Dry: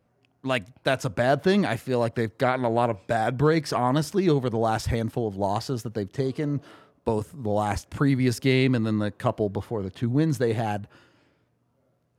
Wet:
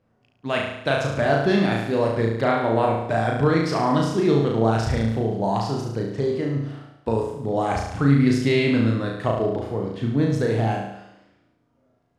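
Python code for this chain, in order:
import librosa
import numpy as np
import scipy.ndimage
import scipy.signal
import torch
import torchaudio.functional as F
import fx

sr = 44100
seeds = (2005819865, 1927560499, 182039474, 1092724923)

y = fx.air_absorb(x, sr, metres=56.0)
y = fx.room_flutter(y, sr, wall_m=6.1, rt60_s=0.82)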